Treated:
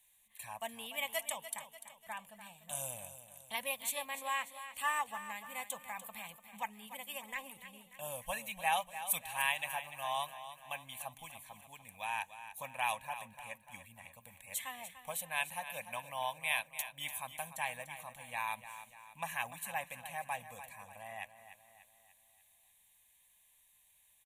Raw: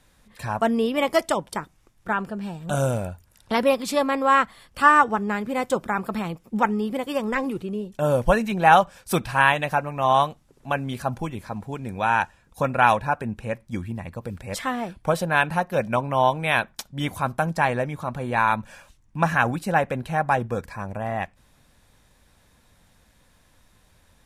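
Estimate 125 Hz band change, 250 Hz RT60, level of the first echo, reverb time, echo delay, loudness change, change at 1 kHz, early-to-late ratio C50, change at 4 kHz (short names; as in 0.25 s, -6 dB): -29.0 dB, none, -12.0 dB, none, 0.294 s, -16.0 dB, -18.0 dB, none, -8.5 dB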